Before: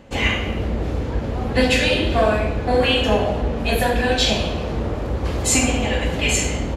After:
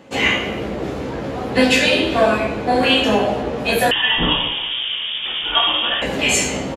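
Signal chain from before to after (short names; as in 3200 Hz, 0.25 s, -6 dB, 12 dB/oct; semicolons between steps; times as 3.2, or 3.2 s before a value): HPF 170 Hz 12 dB/oct; doubler 15 ms -3.5 dB; 3.91–6.02 inverted band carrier 3500 Hz; gain +2 dB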